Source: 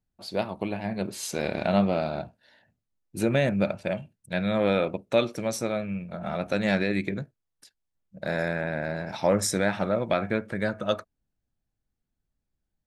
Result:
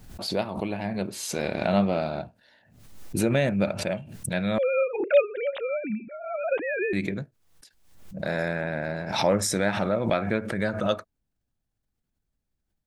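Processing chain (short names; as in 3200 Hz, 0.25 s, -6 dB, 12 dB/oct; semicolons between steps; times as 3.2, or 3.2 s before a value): 4.58–6.93 sine-wave speech; backwards sustainer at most 69 dB/s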